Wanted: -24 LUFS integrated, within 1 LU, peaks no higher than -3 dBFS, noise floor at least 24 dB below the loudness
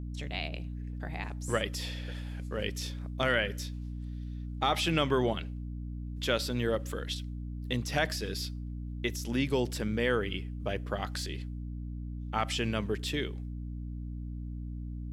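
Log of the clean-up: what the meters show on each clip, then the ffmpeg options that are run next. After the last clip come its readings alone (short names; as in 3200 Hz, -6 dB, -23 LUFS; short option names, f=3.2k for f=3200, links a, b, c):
hum 60 Hz; harmonics up to 300 Hz; hum level -36 dBFS; loudness -33.5 LUFS; peak -14.5 dBFS; loudness target -24.0 LUFS
-> -af "bandreject=f=60:t=h:w=4,bandreject=f=120:t=h:w=4,bandreject=f=180:t=h:w=4,bandreject=f=240:t=h:w=4,bandreject=f=300:t=h:w=4"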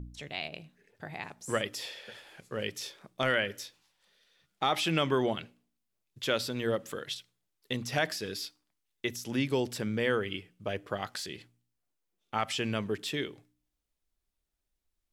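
hum none; loudness -33.0 LUFS; peak -15.0 dBFS; loudness target -24.0 LUFS
-> -af "volume=9dB"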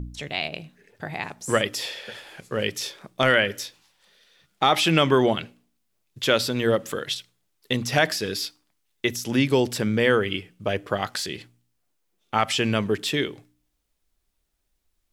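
loudness -24.0 LUFS; peak -6.0 dBFS; noise floor -74 dBFS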